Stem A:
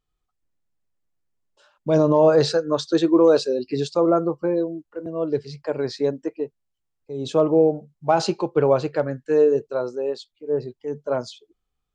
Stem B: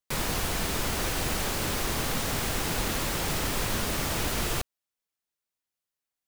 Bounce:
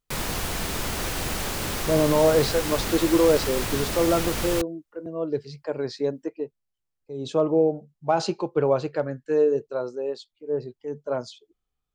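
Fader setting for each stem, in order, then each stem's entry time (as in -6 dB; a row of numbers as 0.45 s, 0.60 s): -3.5 dB, +0.5 dB; 0.00 s, 0.00 s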